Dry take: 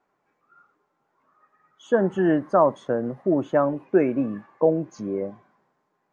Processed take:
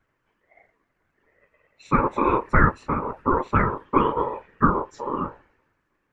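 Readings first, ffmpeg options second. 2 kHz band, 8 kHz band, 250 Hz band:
+7.5 dB, no reading, -2.5 dB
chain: -af "afftfilt=real='hypot(re,im)*cos(2*PI*random(0))':imag='hypot(re,im)*sin(2*PI*random(1))':win_size=512:overlap=0.75,aeval=exprs='val(0)*sin(2*PI*710*n/s)':c=same,lowshelf=f=63:g=6.5,volume=2.66"

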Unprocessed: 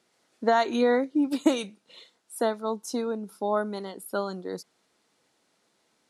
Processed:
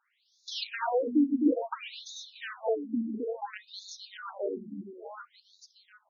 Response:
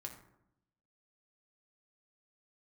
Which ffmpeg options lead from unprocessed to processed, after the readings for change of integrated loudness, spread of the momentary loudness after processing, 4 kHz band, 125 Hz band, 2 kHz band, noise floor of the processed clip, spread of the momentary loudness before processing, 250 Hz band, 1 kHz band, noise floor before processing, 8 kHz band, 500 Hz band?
-4.5 dB, 17 LU, -1.0 dB, no reading, -5.5 dB, -73 dBFS, 14 LU, -2.0 dB, -7.5 dB, -71 dBFS, -7.5 dB, -6.5 dB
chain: -filter_complex "[0:a]aeval=exprs='0.15*(abs(mod(val(0)/0.15+3,4)-2)-1)':c=same,highshelf=f=5900:g=12,asplit=2[s0][s1];[s1]aecho=0:1:260|598|1037|1609|2351:0.631|0.398|0.251|0.158|0.1[s2];[s0][s2]amix=inputs=2:normalize=0,afftfilt=real='re*between(b*sr/1024,230*pow(5000/230,0.5+0.5*sin(2*PI*0.58*pts/sr))/1.41,230*pow(5000/230,0.5+0.5*sin(2*PI*0.58*pts/sr))*1.41)':imag='im*between(b*sr/1024,230*pow(5000/230,0.5+0.5*sin(2*PI*0.58*pts/sr))/1.41,230*pow(5000/230,0.5+0.5*sin(2*PI*0.58*pts/sr))*1.41)':win_size=1024:overlap=0.75"

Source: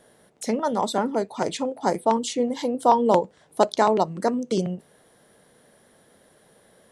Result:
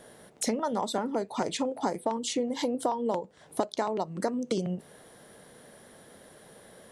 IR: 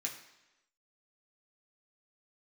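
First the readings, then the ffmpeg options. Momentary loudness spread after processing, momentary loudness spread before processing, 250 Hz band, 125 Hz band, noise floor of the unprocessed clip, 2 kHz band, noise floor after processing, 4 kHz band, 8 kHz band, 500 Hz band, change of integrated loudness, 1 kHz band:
4 LU, 9 LU, -5.5 dB, -5.5 dB, -59 dBFS, -6.5 dB, -55 dBFS, -3.0 dB, -1.5 dB, -8.0 dB, -7.5 dB, -9.5 dB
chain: -af "acompressor=threshold=0.0316:ratio=12,volume=1.68"

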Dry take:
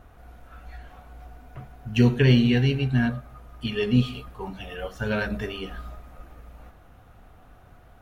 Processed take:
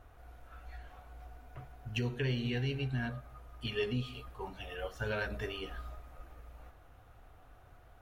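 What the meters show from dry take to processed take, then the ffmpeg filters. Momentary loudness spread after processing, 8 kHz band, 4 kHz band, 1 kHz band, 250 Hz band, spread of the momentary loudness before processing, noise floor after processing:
20 LU, no reading, -9.5 dB, -8.0 dB, -17.0 dB, 19 LU, -58 dBFS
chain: -af "alimiter=limit=0.15:level=0:latency=1:release=286,equalizer=f=200:t=o:w=0.63:g=-10.5,volume=0.501"

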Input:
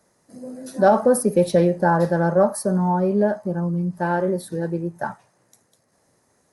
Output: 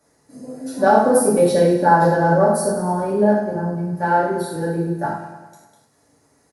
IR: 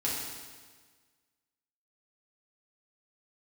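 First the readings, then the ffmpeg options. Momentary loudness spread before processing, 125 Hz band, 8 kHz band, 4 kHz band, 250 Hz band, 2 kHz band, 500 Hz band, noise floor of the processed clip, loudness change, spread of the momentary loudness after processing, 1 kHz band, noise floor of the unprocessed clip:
14 LU, +0.5 dB, +4.0 dB, +5.0 dB, +1.5 dB, +4.5 dB, +2.5 dB, -61 dBFS, +2.5 dB, 11 LU, +6.0 dB, -65 dBFS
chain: -filter_complex "[0:a]aecho=1:1:102|204|306|408|510|612|714:0.316|0.19|0.114|0.0683|0.041|0.0246|0.0148[s0];[1:a]atrim=start_sample=2205,atrim=end_sample=4410[s1];[s0][s1]afir=irnorm=-1:irlink=0,volume=0.794"

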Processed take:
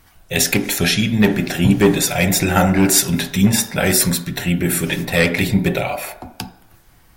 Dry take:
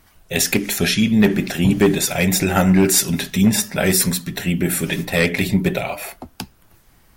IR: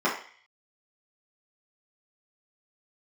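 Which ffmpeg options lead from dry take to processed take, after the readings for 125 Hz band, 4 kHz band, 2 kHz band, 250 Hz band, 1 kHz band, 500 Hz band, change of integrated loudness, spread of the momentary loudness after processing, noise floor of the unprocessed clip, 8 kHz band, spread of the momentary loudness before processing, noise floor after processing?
+1.5 dB, +2.0 dB, +2.0 dB, +0.5 dB, +3.5 dB, +1.0 dB, +1.0 dB, 10 LU, -54 dBFS, +1.5 dB, 12 LU, -51 dBFS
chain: -filter_complex "[0:a]asplit=2[s0][s1];[1:a]atrim=start_sample=2205,asetrate=31752,aresample=44100[s2];[s1][s2]afir=irnorm=-1:irlink=0,volume=0.0708[s3];[s0][s3]amix=inputs=2:normalize=0,volume=1.26"

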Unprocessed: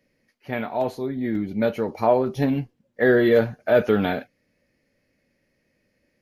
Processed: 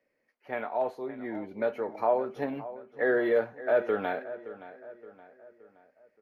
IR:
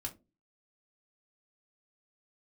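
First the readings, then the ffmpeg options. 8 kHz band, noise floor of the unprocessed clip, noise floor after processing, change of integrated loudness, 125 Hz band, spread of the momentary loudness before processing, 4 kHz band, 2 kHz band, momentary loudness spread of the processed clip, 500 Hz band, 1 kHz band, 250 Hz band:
no reading, -71 dBFS, -76 dBFS, -8.0 dB, -20.0 dB, 11 LU, under -10 dB, -6.5 dB, 18 LU, -7.0 dB, -5.0 dB, -12.5 dB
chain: -filter_complex "[0:a]acrossover=split=370 2100:gain=0.126 1 0.2[s0][s1][s2];[s0][s1][s2]amix=inputs=3:normalize=0,asplit=2[s3][s4];[s4]alimiter=limit=0.141:level=0:latency=1:release=420,volume=1[s5];[s3][s5]amix=inputs=2:normalize=0,asplit=2[s6][s7];[s7]adelay=571,lowpass=f=3100:p=1,volume=0.178,asplit=2[s8][s9];[s9]adelay=571,lowpass=f=3100:p=1,volume=0.46,asplit=2[s10][s11];[s11]adelay=571,lowpass=f=3100:p=1,volume=0.46,asplit=2[s12][s13];[s13]adelay=571,lowpass=f=3100:p=1,volume=0.46[s14];[s6][s8][s10][s12][s14]amix=inputs=5:normalize=0,volume=0.376"

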